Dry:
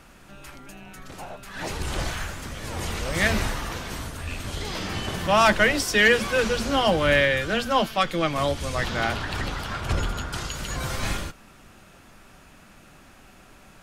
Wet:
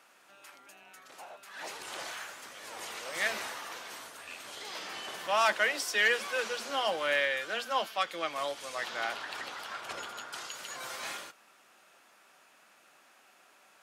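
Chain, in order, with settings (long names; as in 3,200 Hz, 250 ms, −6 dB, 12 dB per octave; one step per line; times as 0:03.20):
high-pass filter 560 Hz 12 dB per octave
level −7.5 dB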